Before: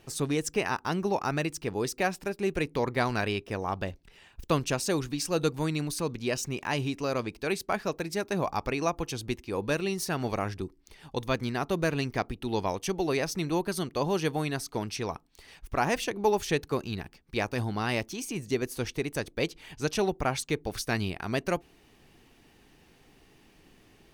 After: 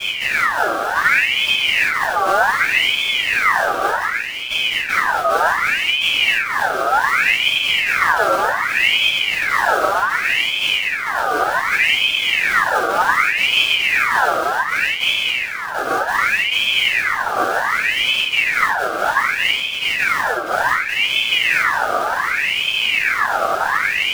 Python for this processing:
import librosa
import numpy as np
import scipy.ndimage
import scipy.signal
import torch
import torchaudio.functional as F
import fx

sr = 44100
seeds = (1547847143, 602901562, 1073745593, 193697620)

y = np.sign(x) * np.sqrt(np.mean(np.square(x)))
y = scipy.signal.sosfilt(scipy.signal.cheby1(5, 1.0, [170.0, 630.0], 'bandpass', fs=sr, output='sos'), y)
y = fx.quant_companded(y, sr, bits=4)
y = fx.room_shoebox(y, sr, seeds[0], volume_m3=140.0, walls='mixed', distance_m=4.1)
y = fx.ring_lfo(y, sr, carrier_hz=1900.0, swing_pct=50, hz=0.66)
y = F.gain(torch.from_numpy(y), 6.0).numpy()